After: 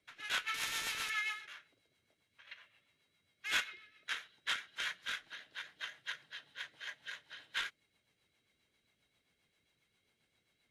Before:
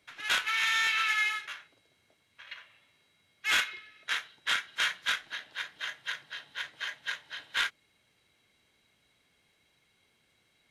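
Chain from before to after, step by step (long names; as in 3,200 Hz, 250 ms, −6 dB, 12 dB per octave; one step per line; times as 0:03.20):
rotating-speaker cabinet horn 7.5 Hz
0:00.54–0:01.10: every bin compressed towards the loudest bin 2 to 1
level −5.5 dB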